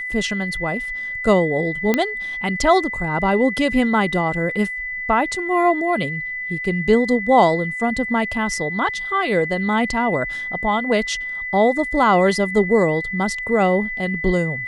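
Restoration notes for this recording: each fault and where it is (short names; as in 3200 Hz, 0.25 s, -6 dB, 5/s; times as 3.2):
tone 2000 Hz -25 dBFS
1.94 pop -4 dBFS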